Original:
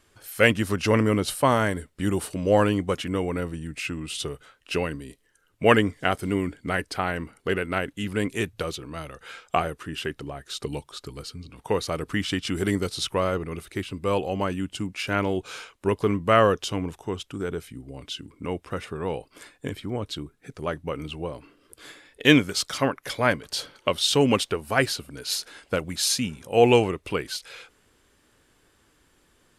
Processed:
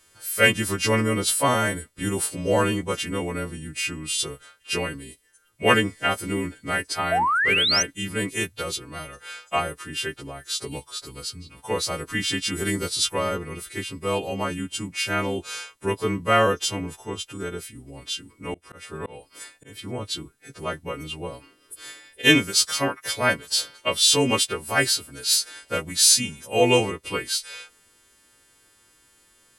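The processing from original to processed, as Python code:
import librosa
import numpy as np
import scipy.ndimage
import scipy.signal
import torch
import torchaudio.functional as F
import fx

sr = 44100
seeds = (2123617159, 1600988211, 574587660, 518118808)

y = fx.freq_snap(x, sr, grid_st=2)
y = fx.spec_paint(y, sr, seeds[0], shape='rise', start_s=7.11, length_s=0.72, low_hz=630.0, high_hz=6300.0, level_db=-20.0)
y = fx.auto_swell(y, sr, attack_ms=228.0, at=(18.54, 19.79))
y = F.gain(torch.from_numpy(y), -1.0).numpy()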